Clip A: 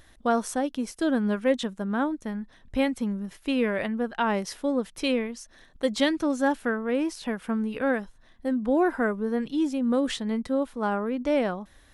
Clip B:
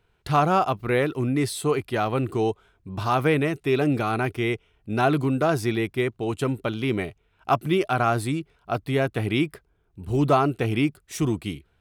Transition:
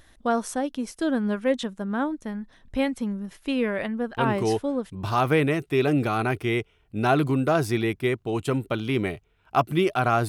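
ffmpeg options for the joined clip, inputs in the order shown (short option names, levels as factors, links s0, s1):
-filter_complex "[0:a]apad=whole_dur=10.28,atrim=end=10.28,atrim=end=4.93,asetpts=PTS-STARTPTS[s0];[1:a]atrim=start=2.11:end=8.22,asetpts=PTS-STARTPTS[s1];[s0][s1]acrossfade=d=0.76:c1=log:c2=log"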